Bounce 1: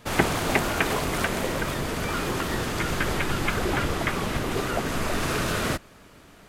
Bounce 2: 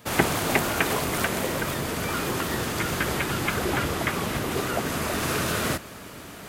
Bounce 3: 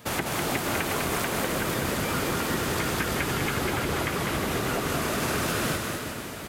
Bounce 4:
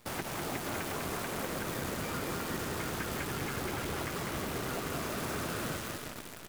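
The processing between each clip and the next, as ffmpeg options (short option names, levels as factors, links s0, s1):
-af "highshelf=f=11000:g=10,areverse,acompressor=mode=upward:threshold=0.0316:ratio=2.5,areverse,highpass=66"
-filter_complex "[0:a]acompressor=threshold=0.0447:ratio=6,asoftclip=type=tanh:threshold=0.15,asplit=2[s0][s1];[s1]aecho=0:1:200|360|488|590.4|672.3:0.631|0.398|0.251|0.158|0.1[s2];[s0][s2]amix=inputs=2:normalize=0,volume=1.19"
-filter_complex "[0:a]acrossover=split=1900[s0][s1];[s1]asoftclip=type=tanh:threshold=0.02[s2];[s0][s2]amix=inputs=2:normalize=0,acrusher=bits=6:dc=4:mix=0:aa=0.000001,volume=0.376"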